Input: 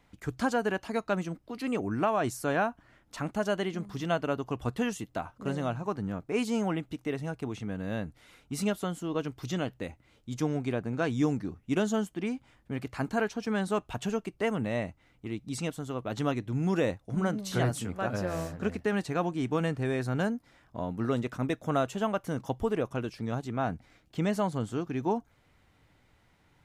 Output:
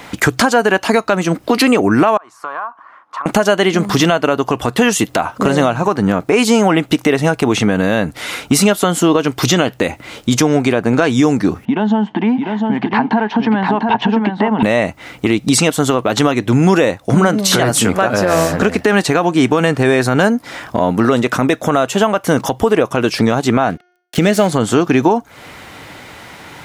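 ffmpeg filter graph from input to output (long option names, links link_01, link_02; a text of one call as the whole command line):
ffmpeg -i in.wav -filter_complex "[0:a]asettb=1/sr,asplit=3[link_01][link_02][link_03];[link_01]atrim=end=2.174[link_04];[link_02]atrim=start=2.17:end=3.26,asetpts=PTS-STARTPTS,afade=type=in:duration=0.004:curve=qsin,afade=type=out:start_time=1.086:duration=0.004:curve=qsin,bandpass=frequency=1100:width_type=q:width=7.9,acompressor=threshold=-53dB:ratio=6:attack=3.2:release=140:knee=1:detection=peak[link_05];[link_03]atrim=start=3.256[link_06];[link_04][link_05]acrossfade=duration=0.004:curve1=hsin:curve2=qsin[link_07];[link_07][link_06]acrossfade=duration=0.004:curve1=qsin:curve2=hsin,asettb=1/sr,asplit=3[link_08][link_09][link_10];[link_08]atrim=end=11.654[link_11];[link_09]atrim=start=11.65:end=14.63,asetpts=PTS-STARTPTS,afade=type=in:duration=0.004:curve=qsin,afade=type=out:start_time=2.976:duration=0.004:curve=qsin,acompressor=threshold=-41dB:ratio=8:attack=3.2:release=140:knee=1:detection=peak,highpass=170,equalizer=frequency=220:width_type=q:width=4:gain=8,equalizer=frequency=360:width_type=q:width=4:gain=-5,equalizer=frequency=540:width_type=q:width=4:gain=-9,equalizer=frequency=890:width_type=q:width=4:gain=10,equalizer=frequency=1300:width_type=q:width=4:gain=-9,equalizer=frequency=2400:width_type=q:width=4:gain=-8,lowpass=frequency=2900:width=0.5412,lowpass=frequency=2900:width=1.3066,aecho=1:1:697:0.562,atrim=end_sample=131418[link_12];[link_10]atrim=start=14.626[link_13];[link_11][link_12]acrossfade=duration=0.004:curve1=hsin:curve2=qsin[link_14];[link_14][link_13]acrossfade=duration=0.004:curve1=qsin:curve2=hsin,asettb=1/sr,asplit=3[link_15][link_16][link_17];[link_15]atrim=end=23.704[link_18];[link_16]atrim=start=23.7:end=24.51,asetpts=PTS-STARTPTS,afade=type=in:duration=0.004:curve=qsin,afade=type=out:start_time=0.806:duration=0.004:curve=qsin,aeval=exprs='sgn(val(0))*max(abs(val(0))-0.00355,0)':channel_layout=same,equalizer=frequency=1000:width_type=o:width=0.57:gain=-11.5,bandreject=frequency=358.2:width_type=h:width=4,bandreject=frequency=716.4:width_type=h:width=4,bandreject=frequency=1074.6:width_type=h:width=4,bandreject=frequency=1432.8:width_type=h:width=4,bandreject=frequency=1791:width_type=h:width=4,bandreject=frequency=2149.2:width_type=h:width=4,bandreject=frequency=2507.4:width_type=h:width=4,bandreject=frequency=2865.6:width_type=h:width=4,bandreject=frequency=3223.8:width_type=h:width=4,bandreject=frequency=3582:width_type=h:width=4,bandreject=frequency=3940.2:width_type=h:width=4,bandreject=frequency=4298.4:width_type=h:width=4,bandreject=frequency=4656.6:width_type=h:width=4,bandreject=frequency=5014.8:width_type=h:width=4,bandreject=frequency=5373:width_type=h:width=4,bandreject=frequency=5731.2:width_type=h:width=4,bandreject=frequency=6089.4:width_type=h:width=4,bandreject=frequency=6447.6:width_type=h:width=4[link_19];[link_17]atrim=start=24.506[link_20];[link_18][link_19]acrossfade=duration=0.004:curve1=hsin:curve2=qsin[link_21];[link_21][link_20]acrossfade=duration=0.004:curve1=qsin:curve2=hsin,highpass=frequency=350:poles=1,acompressor=threshold=-42dB:ratio=6,alimiter=level_in=34.5dB:limit=-1dB:release=50:level=0:latency=1,volume=-1dB" out.wav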